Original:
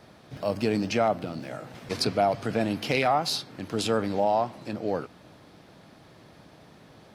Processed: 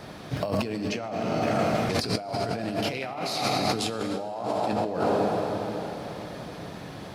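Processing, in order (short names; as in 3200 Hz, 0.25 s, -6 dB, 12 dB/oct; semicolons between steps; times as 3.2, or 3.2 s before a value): plate-style reverb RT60 3.9 s, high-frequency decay 0.85×, DRR 3 dB; negative-ratio compressor -33 dBFS, ratio -1; gain +4.5 dB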